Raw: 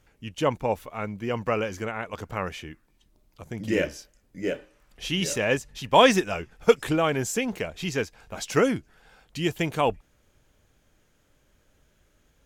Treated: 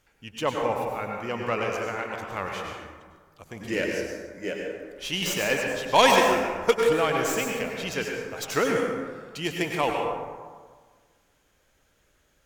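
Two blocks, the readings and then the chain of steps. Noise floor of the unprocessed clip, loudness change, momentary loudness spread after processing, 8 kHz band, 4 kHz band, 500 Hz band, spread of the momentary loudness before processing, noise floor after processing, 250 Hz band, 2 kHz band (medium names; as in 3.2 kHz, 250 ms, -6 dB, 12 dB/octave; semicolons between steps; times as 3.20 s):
-66 dBFS, 0.0 dB, 14 LU, +1.0 dB, +1.5 dB, 0.0 dB, 15 LU, -66 dBFS, -3.0 dB, +2.5 dB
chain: tracing distortion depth 0.064 ms; bass shelf 430 Hz -8.5 dB; plate-style reverb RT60 1.6 s, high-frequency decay 0.45×, pre-delay 85 ms, DRR 0.5 dB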